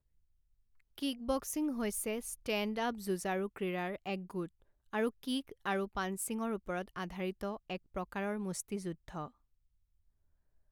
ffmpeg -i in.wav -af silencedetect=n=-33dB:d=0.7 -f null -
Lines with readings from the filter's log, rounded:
silence_start: 0.00
silence_end: 1.02 | silence_duration: 1.02
silence_start: 9.25
silence_end: 10.72 | silence_duration: 1.47